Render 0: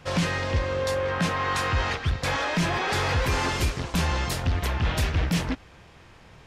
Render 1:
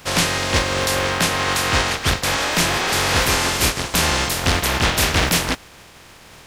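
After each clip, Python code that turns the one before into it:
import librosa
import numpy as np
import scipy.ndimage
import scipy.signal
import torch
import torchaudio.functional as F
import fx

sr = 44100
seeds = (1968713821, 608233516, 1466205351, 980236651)

y = fx.spec_flatten(x, sr, power=0.5)
y = y * librosa.db_to_amplitude(6.0)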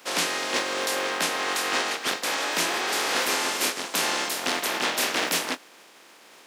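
y = scipy.signal.sosfilt(scipy.signal.butter(4, 250.0, 'highpass', fs=sr, output='sos'), x)
y = fx.doubler(y, sr, ms=24.0, db=-14.0)
y = y * librosa.db_to_amplitude(-6.5)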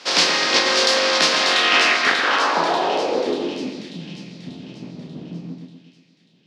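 y = fx.filter_sweep_lowpass(x, sr, from_hz=4900.0, to_hz=160.0, start_s=1.37, end_s=3.98, q=2.6)
y = fx.echo_split(y, sr, split_hz=2800.0, low_ms=121, high_ms=589, feedback_pct=52, wet_db=-5.0)
y = y * librosa.db_to_amplitude(5.5)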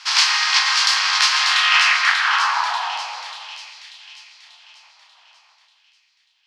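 y = scipy.signal.sosfilt(scipy.signal.butter(8, 870.0, 'highpass', fs=sr, output='sos'), x)
y = fx.notch(y, sr, hz=3700.0, q=22.0)
y = y * librosa.db_to_amplitude(1.5)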